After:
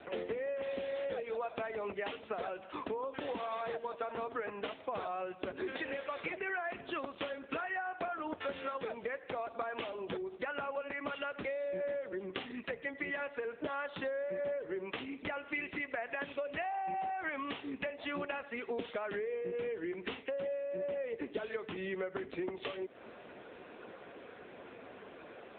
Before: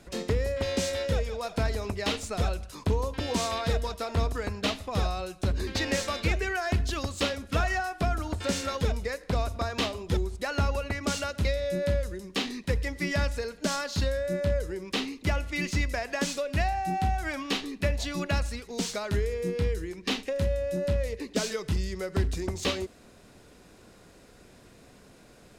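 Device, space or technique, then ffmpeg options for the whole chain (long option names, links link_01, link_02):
voicemail: -af "highpass=360,lowpass=3100,acompressor=threshold=-43dB:ratio=12,volume=9.5dB" -ar 8000 -c:a libopencore_amrnb -b:a 6700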